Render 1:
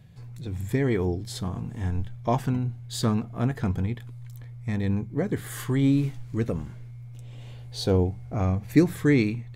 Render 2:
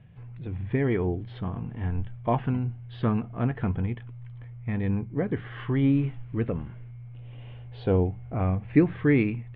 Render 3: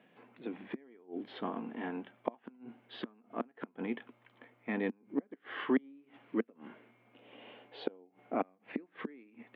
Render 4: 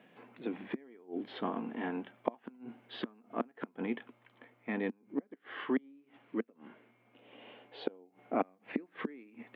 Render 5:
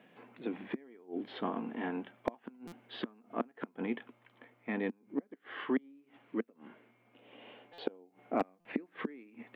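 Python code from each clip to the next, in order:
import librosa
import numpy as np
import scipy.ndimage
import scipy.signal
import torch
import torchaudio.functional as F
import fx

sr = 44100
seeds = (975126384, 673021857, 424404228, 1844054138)

y1 = scipy.signal.sosfilt(scipy.signal.ellip(4, 1.0, 60, 3000.0, 'lowpass', fs=sr, output='sos'), x)
y2 = fx.gate_flip(y1, sr, shuts_db=-18.0, range_db=-33)
y2 = scipy.signal.sosfilt(scipy.signal.ellip(4, 1.0, 80, 240.0, 'highpass', fs=sr, output='sos'), y2)
y2 = y2 * librosa.db_to_amplitude(2.0)
y3 = fx.rider(y2, sr, range_db=4, speed_s=2.0)
y4 = np.clip(y3, -10.0 ** (-19.0 / 20.0), 10.0 ** (-19.0 / 20.0))
y4 = fx.buffer_glitch(y4, sr, at_s=(2.67, 7.73, 8.6), block=256, repeats=8)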